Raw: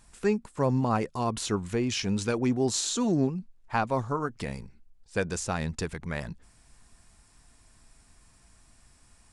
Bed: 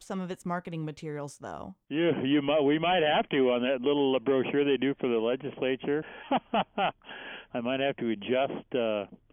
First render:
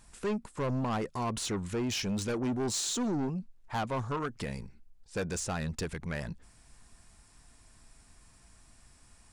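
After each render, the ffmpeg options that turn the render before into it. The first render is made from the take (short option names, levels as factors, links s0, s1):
-af "asoftclip=type=tanh:threshold=0.0422"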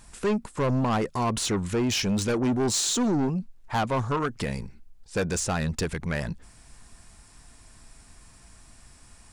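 -af "volume=2.24"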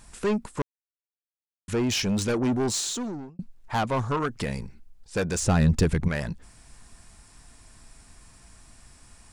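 -filter_complex "[0:a]asettb=1/sr,asplit=3[s0][s1][s2];[s0]atrim=end=5.424[s3];[s1]atrim=start=5.42:end=6.08,asetpts=PTS-STARTPTS,afade=t=in:d=0.004:c=qsin,afade=t=out:st=0.656:d=0.004:c=qsin,lowshelf=f=400:g=10[s4];[s2]atrim=start=6.076[s5];[s3][s4]acrossfade=d=0.004:c1=hsin:c2=qsin[s6];[s6][s5]acrossfade=d=0.004:c1=qsin:c2=hsin,asplit=4[s7][s8][s9][s10];[s7]atrim=end=0.62,asetpts=PTS-STARTPTS,afade=t=out:st=0.616:d=0.004:c=hsin[s11];[s8]atrim=start=0.62:end=1.68,asetpts=PTS-STARTPTS,volume=0[s12];[s9]atrim=start=1.68:end=3.39,asetpts=PTS-STARTPTS,afade=t=in:d=0.004:c=hsin,afade=t=out:st=0.89:d=0.82[s13];[s10]atrim=start=3.39,asetpts=PTS-STARTPTS,afade=t=in:d=0.004:c=hsin[s14];[s11][s12][s13][s14]concat=n=4:v=0:a=1"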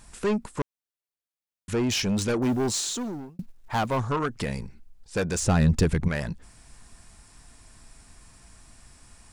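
-filter_complex "[0:a]asettb=1/sr,asplit=3[s0][s1][s2];[s0]atrim=end=2.424[s3];[s1]atrim=start=2.42:end=3.97,asetpts=PTS-STARTPTS,afade=t=in:d=0.004:c=qsin,afade=t=out:st=1.546:d=0.004:c=qsin,acrusher=bits=8:mode=log:mix=0:aa=0.000001[s4];[s2]atrim=start=3.966[s5];[s3][s4]acrossfade=d=0.004:c1=hsin:c2=qsin[s6];[s6][s5]acrossfade=d=0.004:c1=qsin:c2=hsin"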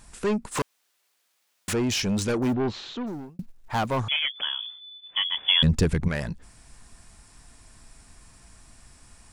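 -filter_complex "[0:a]asplit=3[s0][s1][s2];[s0]afade=t=out:st=0.51:d=0.02[s3];[s1]asplit=2[s4][s5];[s5]highpass=f=720:p=1,volume=35.5,asoftclip=type=tanh:threshold=0.1[s6];[s4][s6]amix=inputs=2:normalize=0,lowpass=f=7900:p=1,volume=0.501,afade=t=in:st=0.51:d=0.02,afade=t=out:st=1.72:d=0.02[s7];[s2]afade=t=in:st=1.72:d=0.02[s8];[s3][s7][s8]amix=inputs=3:normalize=0,asplit=3[s9][s10][s11];[s9]afade=t=out:st=2.52:d=0.02[s12];[s10]lowpass=f=3500:w=0.5412,lowpass=f=3500:w=1.3066,afade=t=in:st=2.52:d=0.02,afade=t=out:st=3.06:d=0.02[s13];[s11]afade=t=in:st=3.06:d=0.02[s14];[s12][s13][s14]amix=inputs=3:normalize=0,asettb=1/sr,asplit=3[s15][s16][s17];[s15]atrim=end=4.084[s18];[s16]atrim=start=4.08:end=5.63,asetpts=PTS-STARTPTS,afade=t=in:d=0.004:c=qsin,afade=t=out:st=1.546:d=0.004:c=qsin,lowpass=f=3000:t=q:w=0.5098,lowpass=f=3000:t=q:w=0.6013,lowpass=f=3000:t=q:w=0.9,lowpass=f=3000:t=q:w=2.563,afreqshift=-3500[s19];[s17]atrim=start=5.626[s20];[s18][s19]acrossfade=d=0.004:c1=hsin:c2=qsin[s21];[s21][s20]acrossfade=d=0.004:c1=qsin:c2=hsin"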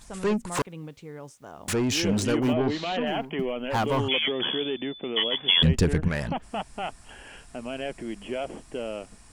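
-filter_complex "[1:a]volume=0.596[s0];[0:a][s0]amix=inputs=2:normalize=0"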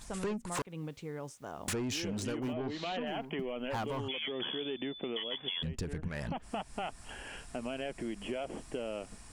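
-af "alimiter=limit=0.119:level=0:latency=1:release=431,acompressor=threshold=0.02:ratio=6"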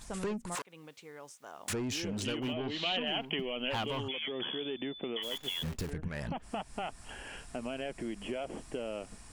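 -filter_complex "[0:a]asettb=1/sr,asplit=3[s0][s1][s2];[s0]atrim=end=0.554[s3];[s1]atrim=start=0.55:end=1.7,asetpts=PTS-STARTPTS,afade=t=in:d=0.004:c=qsin,afade=t=out:st=1.146:d=0.004:c=qsin,highpass=f=960:p=1[s4];[s2]atrim=start=1.696[s5];[s3][s4]acrossfade=d=0.004:c1=hsin:c2=qsin[s6];[s6][s5]acrossfade=d=0.004:c1=qsin:c2=hsin,asettb=1/sr,asplit=3[s7][s8][s9];[s7]atrim=end=2.204[s10];[s8]atrim=start=2.2:end=4.03,asetpts=PTS-STARTPTS,afade=t=in:d=0.004:c=qsin,afade=t=out:st=1.826:d=0.004:c=qsin,equalizer=f=3000:w=2:g=12.5[s11];[s9]atrim=start=4.026[s12];[s10][s11]acrossfade=d=0.004:c1=hsin:c2=qsin[s13];[s13][s12]acrossfade=d=0.004:c1=qsin:c2=hsin,asplit=3[s14][s15][s16];[s14]afade=t=out:st=5.22:d=0.02[s17];[s15]acrusher=bits=8:dc=4:mix=0:aa=0.000001,afade=t=in:st=5.22:d=0.02,afade=t=out:st=5.89:d=0.02[s18];[s16]afade=t=in:st=5.89:d=0.02[s19];[s17][s18][s19]amix=inputs=3:normalize=0"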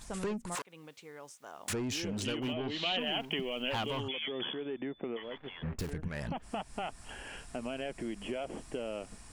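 -filter_complex "[0:a]asplit=3[s0][s1][s2];[s0]afade=t=out:st=2.97:d=0.02[s3];[s1]aeval=exprs='val(0)*gte(abs(val(0)),0.002)':c=same,afade=t=in:st=2.97:d=0.02,afade=t=out:st=3.99:d=0.02[s4];[s2]afade=t=in:st=3.99:d=0.02[s5];[s3][s4][s5]amix=inputs=3:normalize=0,asettb=1/sr,asplit=3[s6][s7][s8];[s6]atrim=end=4.534[s9];[s7]atrim=start=4.53:end=5.79,asetpts=PTS-STARTPTS,afade=t=in:d=0.004:c=qsin,afade=t=out:st=1.256:d=0.004:c=qsin,lowpass=f=2200:w=0.5412,lowpass=f=2200:w=1.3066[s10];[s8]atrim=start=5.786[s11];[s9][s10]acrossfade=d=0.004:c1=hsin:c2=qsin[s12];[s12][s11]acrossfade=d=0.004:c1=qsin:c2=hsin"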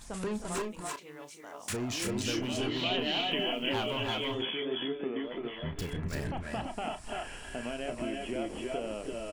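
-filter_complex "[0:a]asplit=2[s0][s1];[s1]adelay=33,volume=0.299[s2];[s0][s2]amix=inputs=2:normalize=0,aecho=1:1:297|315|338|341:0.15|0.376|0.596|0.596"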